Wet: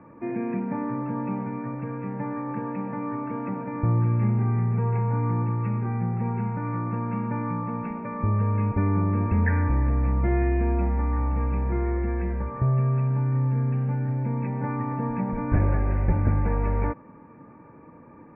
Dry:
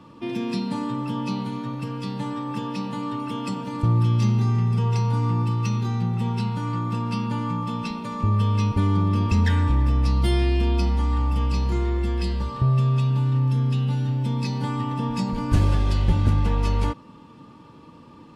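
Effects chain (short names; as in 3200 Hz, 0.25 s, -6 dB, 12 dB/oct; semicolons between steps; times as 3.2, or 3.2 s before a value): rippled Chebyshev low-pass 2400 Hz, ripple 6 dB; gain +3 dB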